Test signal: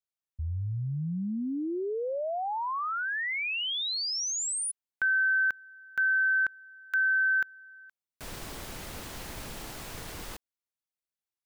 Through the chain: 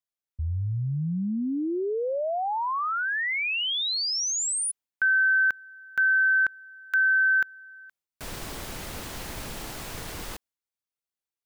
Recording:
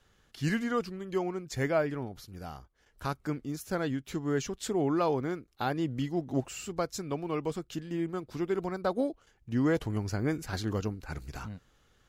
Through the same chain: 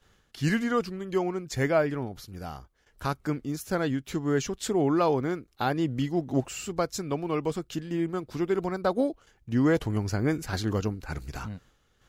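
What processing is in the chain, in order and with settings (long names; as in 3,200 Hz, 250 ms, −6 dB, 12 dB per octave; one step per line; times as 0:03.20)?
noise gate with hold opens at −55 dBFS, hold 71 ms, range −6 dB
level +4 dB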